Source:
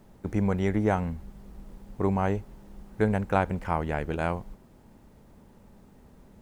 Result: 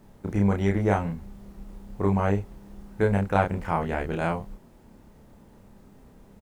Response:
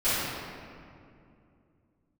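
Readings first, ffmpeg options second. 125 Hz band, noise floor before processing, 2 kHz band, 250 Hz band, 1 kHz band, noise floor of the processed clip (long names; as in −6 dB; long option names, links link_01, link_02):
+3.0 dB, −55 dBFS, +2.0 dB, +2.0 dB, +2.0 dB, −54 dBFS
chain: -filter_complex "[0:a]asplit=2[link_01][link_02];[link_02]adelay=30,volume=-2.5dB[link_03];[link_01][link_03]amix=inputs=2:normalize=0"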